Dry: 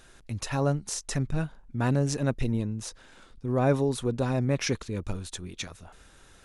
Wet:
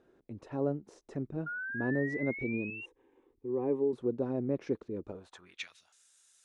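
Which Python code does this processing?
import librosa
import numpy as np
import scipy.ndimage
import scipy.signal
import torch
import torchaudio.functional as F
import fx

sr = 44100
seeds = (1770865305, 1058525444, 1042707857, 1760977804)

y = fx.fixed_phaser(x, sr, hz=940.0, stages=8, at=(2.7, 3.93))
y = fx.spec_paint(y, sr, seeds[0], shape='rise', start_s=1.46, length_s=1.4, low_hz=1400.0, high_hz=2800.0, level_db=-21.0)
y = fx.filter_sweep_bandpass(y, sr, from_hz=360.0, to_hz=7800.0, start_s=5.04, end_s=5.99, q=1.8)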